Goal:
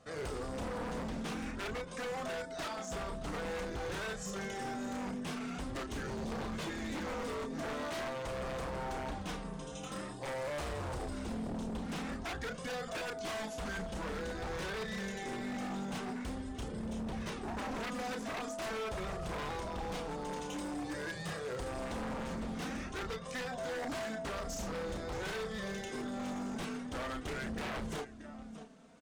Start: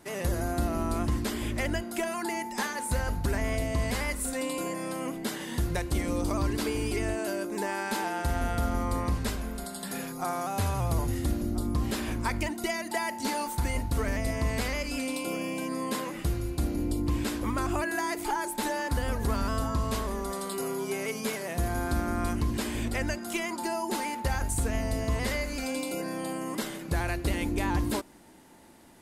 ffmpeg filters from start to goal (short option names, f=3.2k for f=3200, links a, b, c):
-filter_complex "[0:a]highpass=f=190:p=1,asetrate=33038,aresample=44100,atempo=1.33484,asplit=2[a][b];[b]aecho=0:1:627:0.168[c];[a][c]amix=inputs=2:normalize=0,tremolo=f=240:d=0.333,aemphasis=mode=reproduction:type=50kf,asplit=2[d][e];[e]adelay=32,volume=-6dB[f];[d][f]amix=inputs=2:normalize=0,flanger=delay=1.6:depth=2.9:regen=-19:speed=0.47:shape=sinusoidal,aeval=exprs='0.0188*(abs(mod(val(0)/0.0188+3,4)-2)-1)':c=same,volume=1dB"